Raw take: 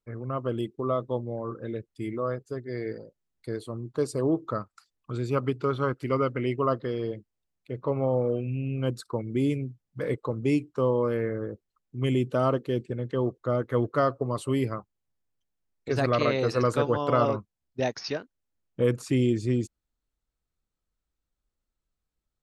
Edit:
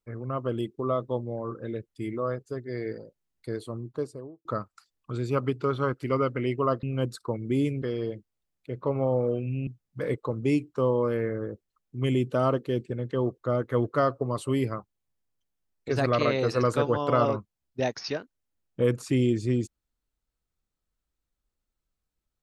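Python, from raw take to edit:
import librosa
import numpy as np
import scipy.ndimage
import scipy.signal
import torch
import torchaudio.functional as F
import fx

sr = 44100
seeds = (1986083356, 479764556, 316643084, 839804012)

y = fx.studio_fade_out(x, sr, start_s=3.69, length_s=0.76)
y = fx.edit(y, sr, fx.move(start_s=8.68, length_s=0.99, to_s=6.83), tone=tone)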